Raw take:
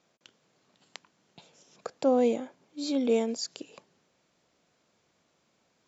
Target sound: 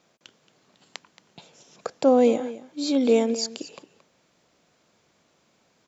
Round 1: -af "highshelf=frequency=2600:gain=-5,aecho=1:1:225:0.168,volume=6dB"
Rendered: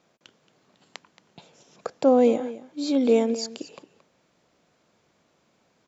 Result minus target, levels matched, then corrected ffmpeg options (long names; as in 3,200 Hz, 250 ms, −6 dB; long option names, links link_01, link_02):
4,000 Hz band −3.5 dB
-af "aecho=1:1:225:0.168,volume=6dB"